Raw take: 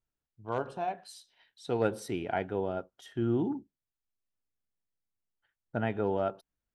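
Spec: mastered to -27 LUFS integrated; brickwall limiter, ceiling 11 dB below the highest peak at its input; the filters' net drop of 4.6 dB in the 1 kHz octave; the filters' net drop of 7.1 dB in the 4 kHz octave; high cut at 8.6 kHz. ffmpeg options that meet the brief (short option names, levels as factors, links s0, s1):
-af "lowpass=8600,equalizer=f=1000:t=o:g=-7,equalizer=f=4000:t=o:g=-9,volume=4.47,alimiter=limit=0.178:level=0:latency=1"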